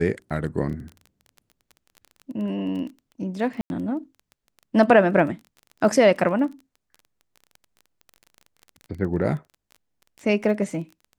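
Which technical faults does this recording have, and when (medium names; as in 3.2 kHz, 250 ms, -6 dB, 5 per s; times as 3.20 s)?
crackle 20 per s -33 dBFS
3.61–3.70 s: dropout 91 ms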